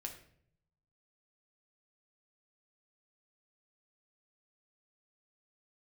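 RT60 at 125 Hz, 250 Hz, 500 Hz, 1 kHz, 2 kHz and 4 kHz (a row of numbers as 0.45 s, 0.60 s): 1.2 s, 0.90 s, 0.75 s, 0.55 s, 0.55 s, 0.45 s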